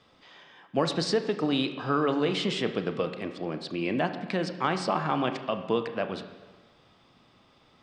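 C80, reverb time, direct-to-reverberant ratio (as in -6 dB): 11.0 dB, 1.3 s, 7.5 dB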